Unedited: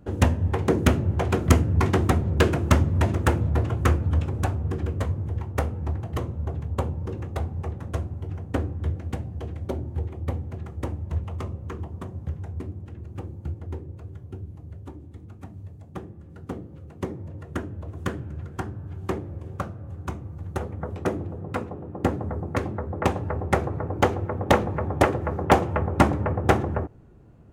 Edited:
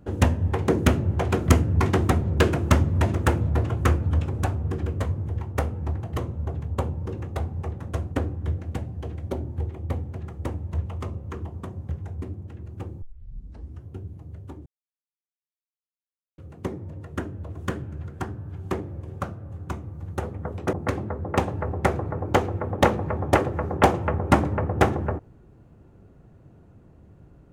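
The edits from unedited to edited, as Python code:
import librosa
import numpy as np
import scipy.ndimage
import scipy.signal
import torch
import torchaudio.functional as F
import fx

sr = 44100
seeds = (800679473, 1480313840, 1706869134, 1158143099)

y = fx.edit(x, sr, fx.cut(start_s=8.12, length_s=0.38),
    fx.tape_start(start_s=13.4, length_s=0.86),
    fx.silence(start_s=15.04, length_s=1.72),
    fx.cut(start_s=21.11, length_s=1.3), tone=tone)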